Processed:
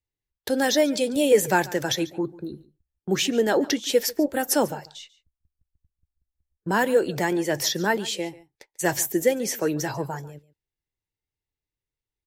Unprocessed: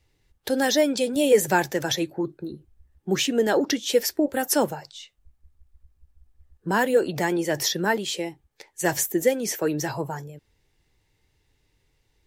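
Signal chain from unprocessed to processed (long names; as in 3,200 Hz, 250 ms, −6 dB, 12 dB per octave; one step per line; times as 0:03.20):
noise gate −45 dBFS, range −24 dB
on a send: single-tap delay 142 ms −20 dB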